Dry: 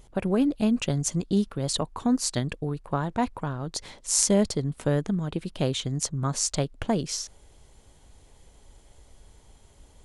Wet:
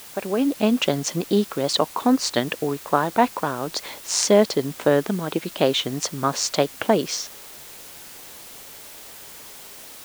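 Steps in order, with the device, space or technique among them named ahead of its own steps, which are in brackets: dictaphone (band-pass 320–4300 Hz; level rider gain up to 9 dB; wow and flutter; white noise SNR 18 dB); trim +1.5 dB

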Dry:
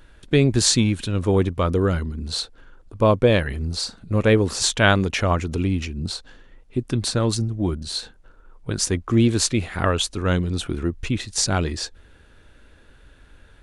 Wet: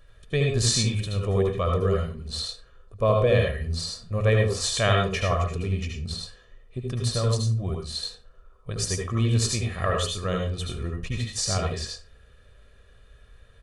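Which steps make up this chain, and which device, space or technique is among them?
microphone above a desk (comb 1.7 ms, depth 71%; reverberation RT60 0.30 s, pre-delay 70 ms, DRR 1 dB); trim -8.5 dB

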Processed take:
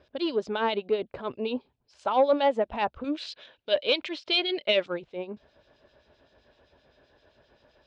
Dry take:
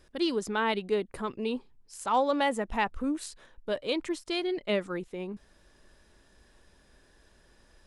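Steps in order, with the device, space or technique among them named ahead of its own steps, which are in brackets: 3.04–4.86 s: frequency weighting D; guitar amplifier with harmonic tremolo (harmonic tremolo 7.7 Hz, depth 70%, crossover 2.4 kHz; saturation -19.5 dBFS, distortion -18 dB; cabinet simulation 89–4200 Hz, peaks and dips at 190 Hz -9 dB, 330 Hz -4 dB, 610 Hz +7 dB, 1.2 kHz -4 dB, 1.9 kHz -7 dB); trim +6 dB

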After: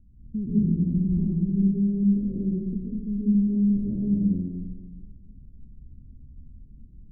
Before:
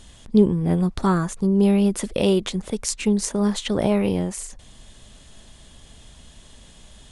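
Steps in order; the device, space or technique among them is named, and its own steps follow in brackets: 0.93–1.49 s: steep low-pass 1.7 kHz 48 dB/octave; club heard from the street (peak limiter -12.5 dBFS, peak gain reduction 8 dB; low-pass 240 Hz 24 dB/octave; reverberation RT60 1.4 s, pre-delay 113 ms, DRR -7.5 dB); trim -7 dB

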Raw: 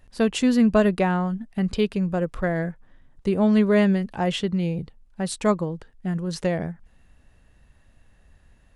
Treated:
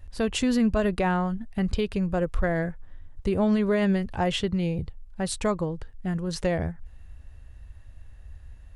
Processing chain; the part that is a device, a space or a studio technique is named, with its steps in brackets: car stereo with a boomy subwoofer (resonant low shelf 120 Hz +10.5 dB, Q 1.5; peak limiter -16 dBFS, peak gain reduction 9 dB)

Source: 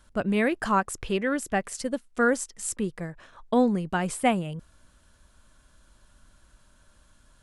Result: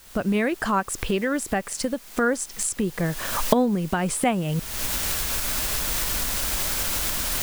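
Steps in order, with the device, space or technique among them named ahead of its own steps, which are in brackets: cheap recorder with automatic gain (white noise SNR 23 dB; recorder AGC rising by 47 dB/s)

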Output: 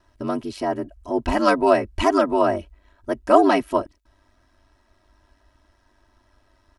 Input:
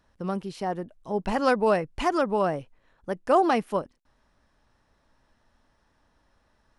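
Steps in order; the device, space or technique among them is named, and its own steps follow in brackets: 0.67–1.17 s: band-stop 3.6 kHz, Q 6.6; ring-modulated robot voice (ring modulator 49 Hz; comb 3.1 ms, depth 99%); trim +5.5 dB

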